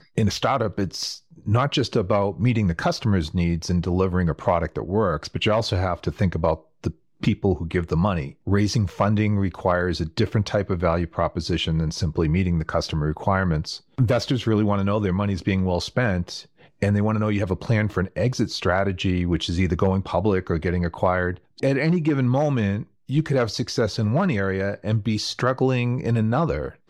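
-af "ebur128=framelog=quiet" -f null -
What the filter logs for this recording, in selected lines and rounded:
Integrated loudness:
  I:         -23.1 LUFS
  Threshold: -33.2 LUFS
Loudness range:
  LRA:         1.3 LU
  Threshold: -43.2 LUFS
  LRA low:   -23.9 LUFS
  LRA high:  -22.6 LUFS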